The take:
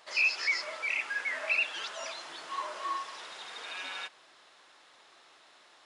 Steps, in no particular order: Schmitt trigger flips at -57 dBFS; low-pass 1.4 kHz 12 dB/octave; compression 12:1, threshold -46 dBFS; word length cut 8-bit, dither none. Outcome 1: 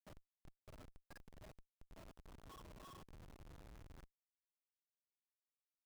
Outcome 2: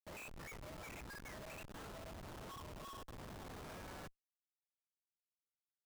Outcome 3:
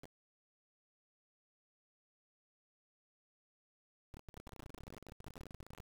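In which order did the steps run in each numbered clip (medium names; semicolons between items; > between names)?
compression > low-pass > word length cut > Schmitt trigger; low-pass > compression > word length cut > Schmitt trigger; low-pass > compression > Schmitt trigger > word length cut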